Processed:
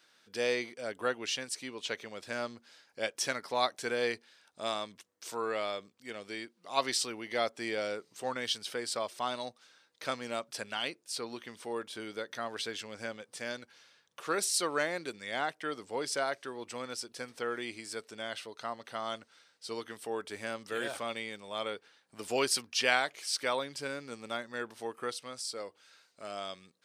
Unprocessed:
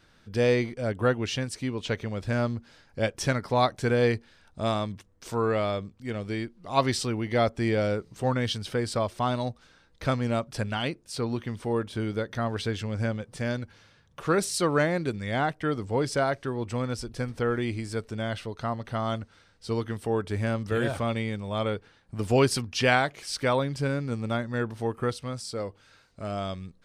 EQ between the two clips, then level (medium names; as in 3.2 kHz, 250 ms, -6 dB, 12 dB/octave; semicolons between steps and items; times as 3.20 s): high-pass 340 Hz 12 dB/octave; treble shelf 2 kHz +9.5 dB; -8.0 dB